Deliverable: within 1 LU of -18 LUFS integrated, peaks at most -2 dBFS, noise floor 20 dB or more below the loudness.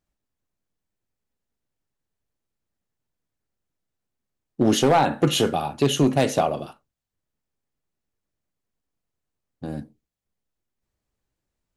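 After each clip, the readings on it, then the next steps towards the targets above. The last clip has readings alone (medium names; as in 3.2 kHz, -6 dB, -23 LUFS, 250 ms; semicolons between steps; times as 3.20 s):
clipped samples 0.4%; clipping level -11.0 dBFS; loudness -21.0 LUFS; peak level -11.0 dBFS; loudness target -18.0 LUFS
-> clip repair -11 dBFS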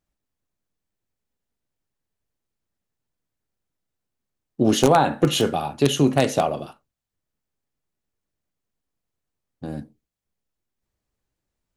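clipped samples 0.0%; loudness -20.0 LUFS; peak level -2.0 dBFS; loudness target -18.0 LUFS
-> trim +2 dB; peak limiter -2 dBFS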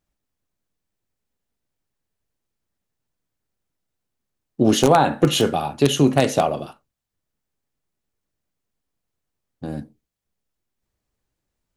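loudness -18.5 LUFS; peak level -2.0 dBFS; noise floor -81 dBFS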